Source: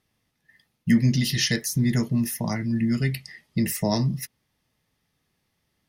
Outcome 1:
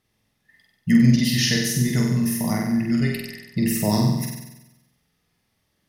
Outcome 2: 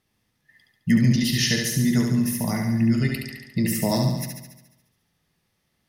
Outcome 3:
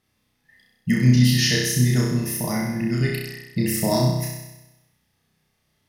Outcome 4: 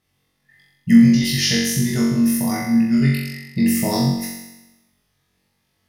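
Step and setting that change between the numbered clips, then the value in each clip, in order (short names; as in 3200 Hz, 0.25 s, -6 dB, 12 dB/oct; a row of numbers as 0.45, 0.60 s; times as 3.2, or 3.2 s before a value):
flutter echo, walls apart: 8.1, 12.1, 5.5, 3.7 m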